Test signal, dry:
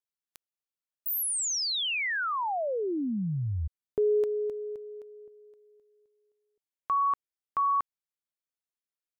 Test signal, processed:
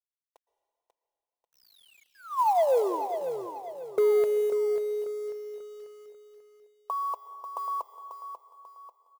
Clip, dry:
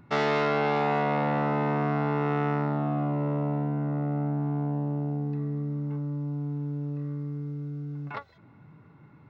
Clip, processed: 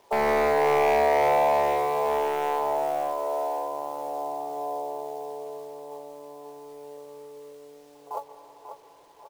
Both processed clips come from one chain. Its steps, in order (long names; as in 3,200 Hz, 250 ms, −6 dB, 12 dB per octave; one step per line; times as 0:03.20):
elliptic band-pass filter 410–990 Hz, stop band 40 dB
comb filter 5.9 ms, depth 35%
wave folding −25.5 dBFS
log-companded quantiser 6 bits
on a send: repeating echo 541 ms, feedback 40%, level −9 dB
on the sum: dense smooth reverb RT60 2.4 s, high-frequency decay 1×, pre-delay 105 ms, DRR 12.5 dB
level +7.5 dB